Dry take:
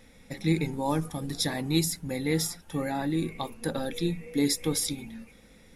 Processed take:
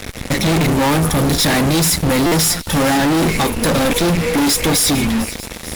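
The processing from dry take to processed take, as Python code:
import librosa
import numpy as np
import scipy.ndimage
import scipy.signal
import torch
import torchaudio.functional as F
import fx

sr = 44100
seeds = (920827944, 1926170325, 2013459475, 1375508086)

p1 = fx.level_steps(x, sr, step_db=19)
p2 = x + (p1 * librosa.db_to_amplitude(-2.0))
p3 = fx.peak_eq(p2, sr, hz=71.0, db=8.0, octaves=0.64)
p4 = fx.fuzz(p3, sr, gain_db=44.0, gate_db=-47.0)
p5 = p4 + fx.echo_wet_highpass(p4, sr, ms=448, feedback_pct=71, hz=4200.0, wet_db=-14, dry=0)
y = fx.buffer_glitch(p5, sr, at_s=(2.26,), block=256, repeats=9)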